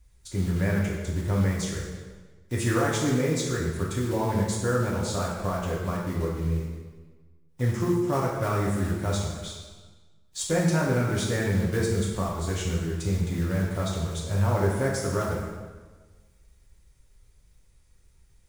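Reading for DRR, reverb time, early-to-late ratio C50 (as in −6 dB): −4.5 dB, 1.4 s, 1.5 dB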